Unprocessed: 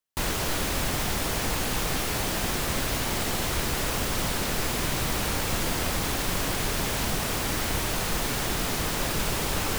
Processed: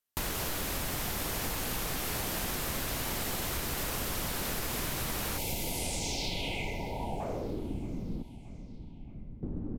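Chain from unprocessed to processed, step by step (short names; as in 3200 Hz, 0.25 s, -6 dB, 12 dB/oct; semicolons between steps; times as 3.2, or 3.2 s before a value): 5.38–7.2 spectral delete 990–2000 Hz; 8.22–9.43 passive tone stack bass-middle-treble 6-0-2; compressor 5:1, threshold -30 dBFS, peak gain reduction 7.5 dB; low-pass sweep 14000 Hz -> 260 Hz, 5.67–7.79; feedback echo 0.625 s, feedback 52%, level -19 dB; gain -1.5 dB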